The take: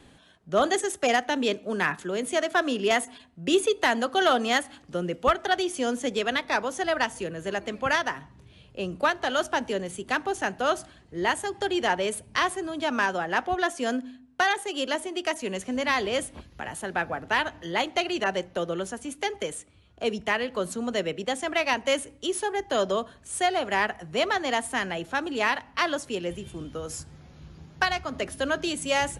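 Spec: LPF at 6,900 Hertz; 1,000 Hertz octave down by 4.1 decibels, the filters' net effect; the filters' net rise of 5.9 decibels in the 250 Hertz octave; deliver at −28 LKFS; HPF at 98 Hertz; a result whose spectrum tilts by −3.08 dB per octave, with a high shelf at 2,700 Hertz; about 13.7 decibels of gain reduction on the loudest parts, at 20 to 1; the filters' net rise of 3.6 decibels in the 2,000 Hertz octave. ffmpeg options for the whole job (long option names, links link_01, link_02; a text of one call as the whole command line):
ffmpeg -i in.wav -af "highpass=98,lowpass=6900,equalizer=frequency=250:width_type=o:gain=8,equalizer=frequency=1000:width_type=o:gain=-8,equalizer=frequency=2000:width_type=o:gain=9,highshelf=frequency=2700:gain=-6,acompressor=threshold=-28dB:ratio=20,volume=5.5dB" out.wav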